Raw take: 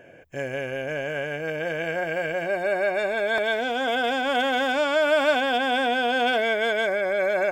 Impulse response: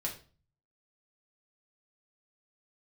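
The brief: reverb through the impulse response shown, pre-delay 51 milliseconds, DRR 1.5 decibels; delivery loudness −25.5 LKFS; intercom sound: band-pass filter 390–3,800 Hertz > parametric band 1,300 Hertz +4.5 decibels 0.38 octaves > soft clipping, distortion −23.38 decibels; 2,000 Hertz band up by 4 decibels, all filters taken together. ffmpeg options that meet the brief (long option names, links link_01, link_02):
-filter_complex "[0:a]equalizer=frequency=2000:width_type=o:gain=4,asplit=2[link_01][link_02];[1:a]atrim=start_sample=2205,adelay=51[link_03];[link_02][link_03]afir=irnorm=-1:irlink=0,volume=-3.5dB[link_04];[link_01][link_04]amix=inputs=2:normalize=0,highpass=390,lowpass=3800,equalizer=frequency=1300:width_type=o:width=0.38:gain=4.5,asoftclip=threshold=-9.5dB,volume=-4.5dB"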